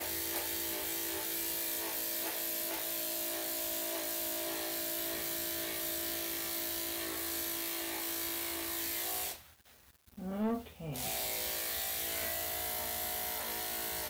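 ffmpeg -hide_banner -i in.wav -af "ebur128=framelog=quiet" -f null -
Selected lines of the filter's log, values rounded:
Integrated loudness:
  I:         -34.7 LUFS
  Threshold: -44.9 LUFS
Loudness range:
  LRA:         2.4 LU
  Threshold: -55.0 LUFS
  LRA low:   -36.6 LUFS
  LRA high:  -34.2 LUFS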